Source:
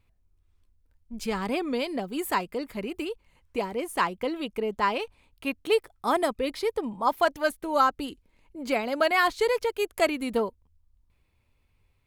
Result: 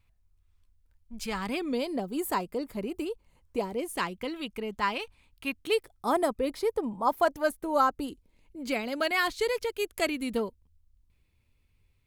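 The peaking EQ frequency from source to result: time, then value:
peaking EQ -7.5 dB 1.9 oct
1.39 s 350 Hz
1.86 s 2.2 kHz
3.57 s 2.2 kHz
4.34 s 520 Hz
5.58 s 520 Hz
6.17 s 2.9 kHz
7.98 s 2.9 kHz
8.59 s 840 Hz

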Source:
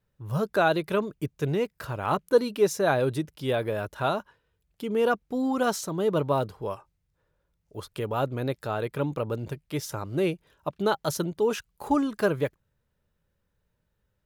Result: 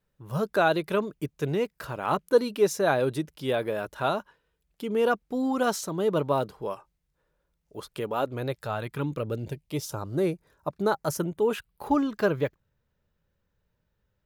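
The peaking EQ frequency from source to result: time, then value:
peaking EQ -13 dB 0.49 oct
8.06 s 96 Hz
9.15 s 800 Hz
10.30 s 3 kHz
10.91 s 3 kHz
12.08 s 9.7 kHz

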